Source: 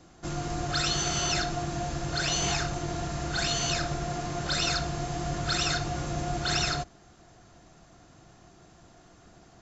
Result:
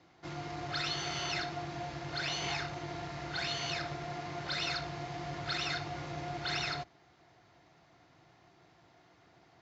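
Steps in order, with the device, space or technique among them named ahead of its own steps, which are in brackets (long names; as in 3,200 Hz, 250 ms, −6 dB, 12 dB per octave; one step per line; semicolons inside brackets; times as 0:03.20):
guitar amplifier (tube saturation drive 18 dB, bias 0.35; bass and treble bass +1 dB, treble +6 dB; loudspeaker in its box 110–4,500 Hz, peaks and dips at 210 Hz −9 dB, 900 Hz +5 dB, 2,100 Hz +8 dB)
level −6.5 dB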